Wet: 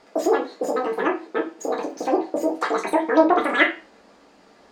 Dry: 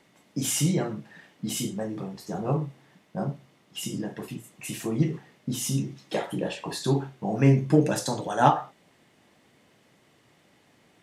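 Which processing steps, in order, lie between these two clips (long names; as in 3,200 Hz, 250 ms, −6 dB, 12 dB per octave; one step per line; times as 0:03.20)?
low-pass filter 2,700 Hz 12 dB per octave
spectral tilt −2 dB per octave
treble cut that deepens with the level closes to 1,400 Hz, closed at −16 dBFS
in parallel at −0.5 dB: downward compressor, threshold −27 dBFS, peak gain reduction 17 dB
on the sum: dense smooth reverb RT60 0.76 s, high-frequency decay 0.8×, DRR 3 dB
wrong playback speed 33 rpm record played at 78 rpm
level −1.5 dB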